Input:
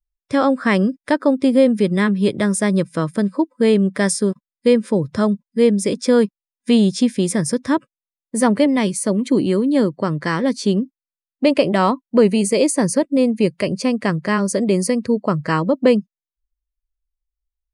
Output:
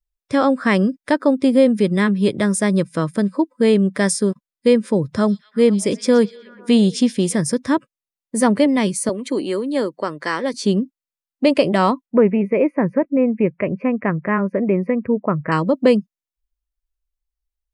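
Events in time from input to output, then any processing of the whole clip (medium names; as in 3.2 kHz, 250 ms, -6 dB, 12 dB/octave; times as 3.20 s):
5.15–7.35 s: repeats whose band climbs or falls 121 ms, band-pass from 4.6 kHz, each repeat -0.7 oct, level -11.5 dB
9.09–10.54 s: high-pass 380 Hz
12.06–15.52 s: elliptic low-pass 2.4 kHz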